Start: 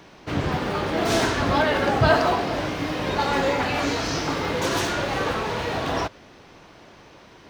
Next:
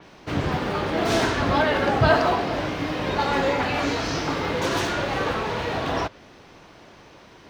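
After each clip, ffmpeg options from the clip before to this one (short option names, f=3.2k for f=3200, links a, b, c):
-af "adynamicequalizer=threshold=0.00794:dfrequency=5300:dqfactor=0.7:tfrequency=5300:tqfactor=0.7:attack=5:release=100:ratio=0.375:range=2.5:mode=cutabove:tftype=highshelf"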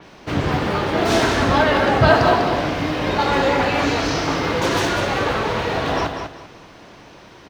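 -af "aecho=1:1:196|392|588:0.447|0.116|0.0302,volume=4dB"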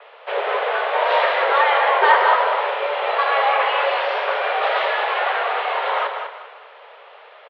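-filter_complex "[0:a]asplit=7[a][b][c][d][e][f][g];[b]adelay=117,afreqshift=58,volume=-16dB[h];[c]adelay=234,afreqshift=116,volume=-20.3dB[i];[d]adelay=351,afreqshift=174,volume=-24.6dB[j];[e]adelay=468,afreqshift=232,volume=-28.9dB[k];[f]adelay=585,afreqshift=290,volume=-33.2dB[l];[g]adelay=702,afreqshift=348,volume=-37.5dB[m];[a][h][i][j][k][l][m]amix=inputs=7:normalize=0,highpass=f=170:t=q:w=0.5412,highpass=f=170:t=q:w=1.307,lowpass=f=3.2k:t=q:w=0.5176,lowpass=f=3.2k:t=q:w=0.7071,lowpass=f=3.2k:t=q:w=1.932,afreqshift=270"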